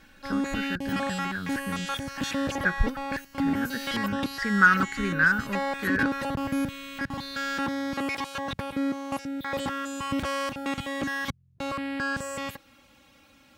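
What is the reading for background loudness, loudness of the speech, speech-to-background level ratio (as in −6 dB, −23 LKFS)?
−31.0 LKFS, −28.0 LKFS, 3.0 dB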